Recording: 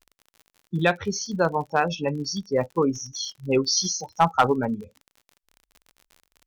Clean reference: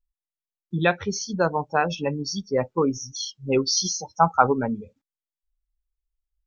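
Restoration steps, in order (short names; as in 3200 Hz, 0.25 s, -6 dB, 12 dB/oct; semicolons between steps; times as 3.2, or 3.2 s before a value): clip repair -9 dBFS; de-click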